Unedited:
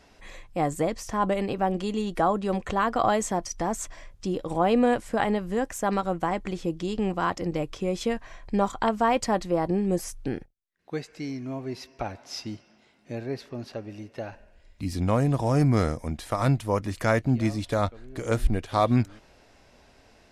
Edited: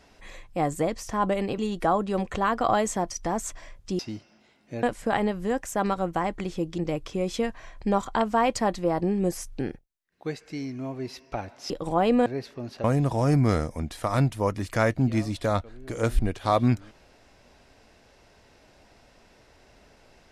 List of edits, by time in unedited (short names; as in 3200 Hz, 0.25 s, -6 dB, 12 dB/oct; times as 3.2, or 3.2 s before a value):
1.58–1.93 cut
4.34–4.9 swap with 12.37–13.21
6.85–7.45 cut
13.79–15.12 cut